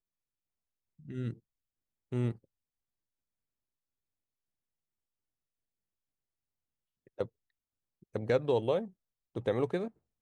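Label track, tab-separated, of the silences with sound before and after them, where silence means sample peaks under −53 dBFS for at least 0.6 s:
1.380000	2.120000	silence
2.440000	7.070000	silence
7.270000	8.020000	silence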